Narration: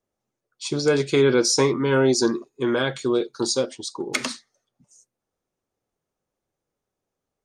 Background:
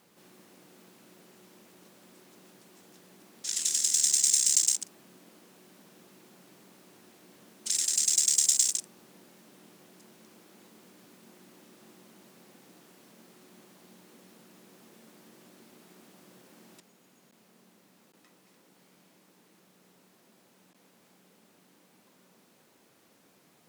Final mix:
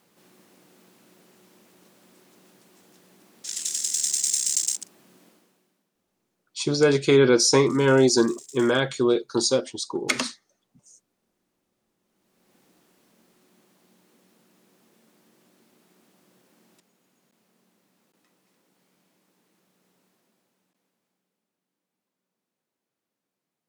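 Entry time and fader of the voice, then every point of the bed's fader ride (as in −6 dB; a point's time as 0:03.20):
5.95 s, +1.0 dB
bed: 0:05.26 −0.5 dB
0:05.91 −22 dB
0:11.97 −22 dB
0:12.56 −6 dB
0:20.08 −6 dB
0:21.53 −22.5 dB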